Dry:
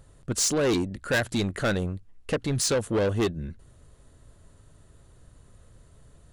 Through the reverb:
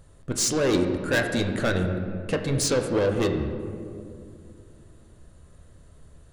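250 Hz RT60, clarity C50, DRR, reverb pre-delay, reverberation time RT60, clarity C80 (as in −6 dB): 3.4 s, 6.0 dB, 4.0 dB, 11 ms, 2.4 s, 7.5 dB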